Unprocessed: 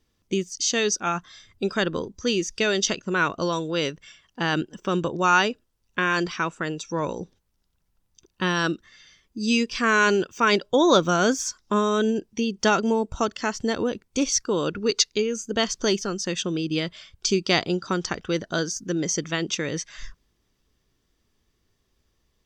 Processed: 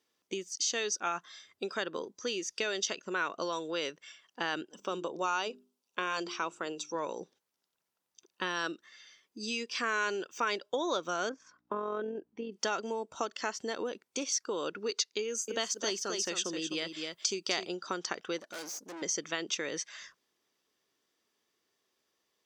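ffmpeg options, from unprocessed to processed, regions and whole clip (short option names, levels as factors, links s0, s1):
-filter_complex "[0:a]asettb=1/sr,asplit=3[s0][s1][s2];[s0]atrim=end=4.714[s3];[s1]atrim=start=4.71:end=6.95,asetpts=PTS-STARTPTS,afade=t=in:d=0.004:c=qsin,afade=t=out:st=2.236:d=0.004:c=qsin,highpass=130,equalizer=f=1800:t=o:w=0.55:g=-9.5,bandreject=f=50:t=h:w=6,bandreject=f=100:t=h:w=6,bandreject=f=150:t=h:w=6,bandreject=f=200:t=h:w=6,bandreject=f=250:t=h:w=6,bandreject=f=300:t=h:w=6,bandreject=f=350:t=h:w=6,bandreject=f=400:t=h:w=6[s4];[s2]atrim=start=6.946[s5];[s3][s4]acrossfade=d=0.004:c1=hsin:c2=qsin[s6];[s6][s5]acrossfade=d=0.004:c1=qsin:c2=hsin,asettb=1/sr,asplit=3[s7][s8][s9];[s7]atrim=end=11.294[s10];[s8]atrim=start=11.29:end=12.52,asetpts=PTS-STARTPTS,afade=t=in:d=0.004:c=qsin,afade=t=out:st=1.226:d=0.004:c=qsin,lowpass=1400,aeval=exprs='val(0)+0.00158*(sin(2*PI*60*n/s)+sin(2*PI*2*60*n/s)/2+sin(2*PI*3*60*n/s)/3+sin(2*PI*4*60*n/s)/4+sin(2*PI*5*60*n/s)/5)':c=same,tremolo=f=44:d=0.4[s11];[s9]atrim=start=12.516[s12];[s10][s11]acrossfade=d=0.004:c1=hsin:c2=qsin[s13];[s13][s12]acrossfade=d=0.004:c1=qsin:c2=hsin,asettb=1/sr,asplit=3[s14][s15][s16];[s14]atrim=end=15.224[s17];[s15]atrim=start=15.22:end=17.67,asetpts=PTS-STARTPTS,afade=t=in:d=0.004:c=qsin,afade=t=out:st=2.446:d=0.004:c=qsin,highshelf=f=7900:g=11.5,aecho=1:1:258:0.398,atrim=end_sample=108045[s18];[s16]atrim=start=17.666[s19];[s17][s18]acrossfade=d=0.004:c1=hsin:c2=qsin[s20];[s20][s19]acrossfade=d=0.004:c1=qsin:c2=hsin,asettb=1/sr,asplit=3[s21][s22][s23];[s21]atrim=end=18.384[s24];[s22]atrim=start=18.38:end=19.02,asetpts=PTS-STARTPTS,afade=t=in:d=0.004:c=qsin,afade=t=out:st=0.636:d=0.004:c=qsin,highshelf=f=6400:g=7,aecho=1:1:3.5:0.34,atrim=end_sample=28224,aeval=exprs='(tanh(56.2*val(0)+0.7)-tanh(0.7))/56.2':c=same[s25];[s23]atrim=start=19.016[s26];[s24][s25]acrossfade=d=0.004:c1=hsin:c2=qsin[s27];[s27][s26]acrossfade=d=0.004:c1=qsin:c2=hsin,acompressor=threshold=0.0562:ratio=4,highpass=390,volume=0.668"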